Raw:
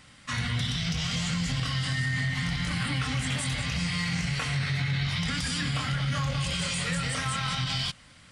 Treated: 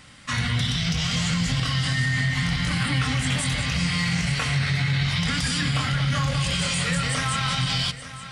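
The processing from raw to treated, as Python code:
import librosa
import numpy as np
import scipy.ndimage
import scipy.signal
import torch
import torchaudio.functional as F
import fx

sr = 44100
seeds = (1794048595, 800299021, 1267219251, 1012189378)

y = x + 10.0 ** (-13.5 / 20.0) * np.pad(x, (int(875 * sr / 1000.0), 0))[:len(x)]
y = y * 10.0 ** (5.0 / 20.0)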